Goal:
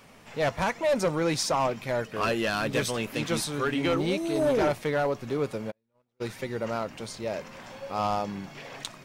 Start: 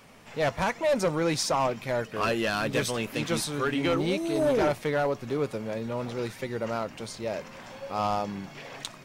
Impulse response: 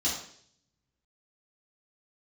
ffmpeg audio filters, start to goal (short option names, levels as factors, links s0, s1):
-filter_complex "[0:a]asplit=3[s0][s1][s2];[s0]afade=t=out:st=5.7:d=0.02[s3];[s1]agate=range=0.00501:threshold=0.0562:ratio=16:detection=peak,afade=t=in:st=5.7:d=0.02,afade=t=out:st=6.2:d=0.02[s4];[s2]afade=t=in:st=6.2:d=0.02[s5];[s3][s4][s5]amix=inputs=3:normalize=0"